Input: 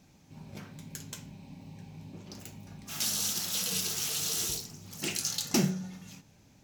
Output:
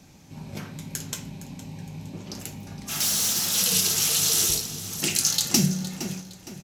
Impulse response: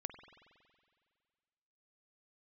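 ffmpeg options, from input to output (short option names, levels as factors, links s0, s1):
-filter_complex "[0:a]aresample=32000,aresample=44100,asettb=1/sr,asplit=3[s0][s1][s2];[s0]atrim=end=2.984[s3];[s1]atrim=start=2.98:end=3.58,asetpts=PTS-STARTPTS,afade=t=in:d=0.004:c=qsin,afade=t=out:st=0.596:d=0.004:c=qsin,asoftclip=type=hard:threshold=0.0282[s4];[s2]atrim=start=3.576[s5];[s3][s4]acrossfade=d=0.004:c1=hsin:c2=qsin[s6];[s6][s5]acrossfade=d=0.004:c1=qsin:c2=hsin,aecho=1:1:463|926|1389:0.178|0.064|0.023,asplit=2[s7][s8];[1:a]atrim=start_sample=2205,highshelf=f=5000:g=10[s9];[s8][s9]afir=irnorm=-1:irlink=0,volume=0.473[s10];[s7][s10]amix=inputs=2:normalize=0,acrossover=split=200|3000[s11][s12][s13];[s12]acompressor=threshold=0.0158:ratio=6[s14];[s11][s14][s13]amix=inputs=3:normalize=0,volume=2"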